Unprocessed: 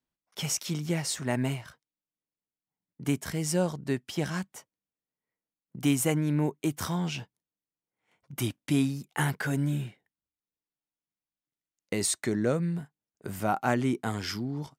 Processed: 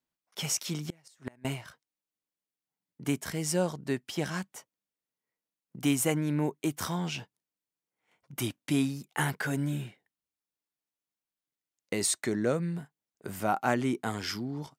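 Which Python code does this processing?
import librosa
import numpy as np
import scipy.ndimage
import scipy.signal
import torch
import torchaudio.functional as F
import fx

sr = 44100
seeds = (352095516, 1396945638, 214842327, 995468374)

y = fx.low_shelf(x, sr, hz=150.0, db=-7.0)
y = fx.gate_flip(y, sr, shuts_db=-22.0, range_db=-30, at=(0.73, 1.45))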